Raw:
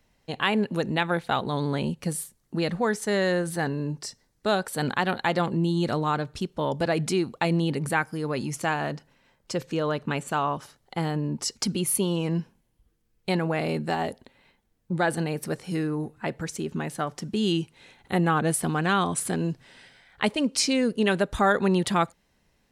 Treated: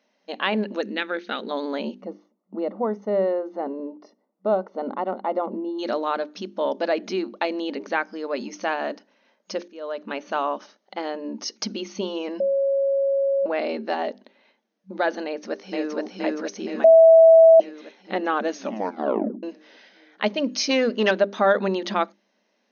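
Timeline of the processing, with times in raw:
0.81–1.51 band shelf 810 Hz -11 dB 1.1 oct
2.01–5.79 polynomial smoothing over 65 samples
6.96–7.36 air absorption 77 m
9.68–10.25 fade in, from -23 dB
12.4–13.46 bleep 550 Hz -22 dBFS
15.25–15.93 echo throw 0.47 s, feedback 65%, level 0 dB
16.84–17.6 bleep 653 Hz -11.5 dBFS
18.48 tape stop 0.95 s
20.69–21.11 overdrive pedal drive 15 dB, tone 3300 Hz, clips at -9.5 dBFS
whole clip: notches 50/100/150/200/250/300/350/400 Hz; FFT band-pass 190–6600 Hz; bell 600 Hz +8.5 dB 0.22 oct

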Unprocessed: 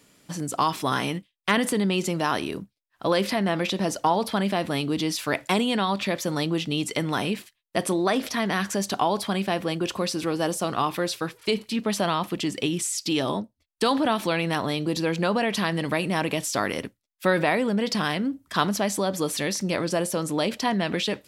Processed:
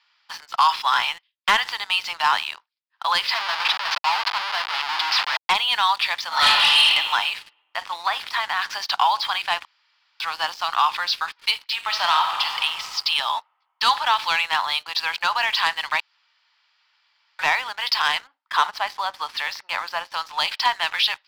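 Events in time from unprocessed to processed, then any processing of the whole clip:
3.34–5.5 Schmitt trigger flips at -30.5 dBFS
6.28–6.85 reverb throw, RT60 1.5 s, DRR -11 dB
7.36–8.62 de-esser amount 90%
9.65–10.2 room tone
11.74–12.61 reverb throw, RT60 2.2 s, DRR 3.5 dB
16–17.39 room tone
18.24–20.14 RIAA curve playback
whole clip: Chebyshev band-pass 860–5000 Hz, order 4; dynamic EQ 1600 Hz, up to -3 dB, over -39 dBFS, Q 1.1; sample leveller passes 2; gain +3.5 dB

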